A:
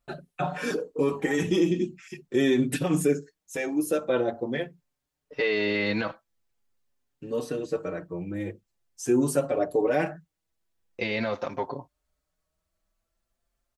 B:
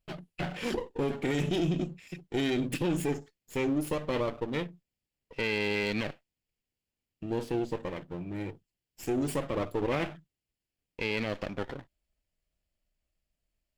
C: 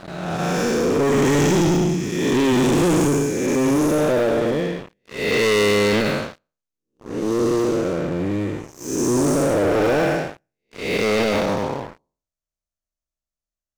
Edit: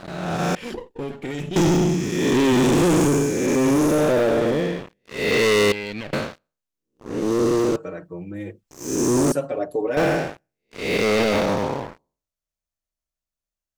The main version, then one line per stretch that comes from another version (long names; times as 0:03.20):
C
0:00.55–0:01.56: punch in from B
0:05.72–0:06.13: punch in from B
0:07.76–0:08.71: punch in from A
0:09.32–0:09.97: punch in from A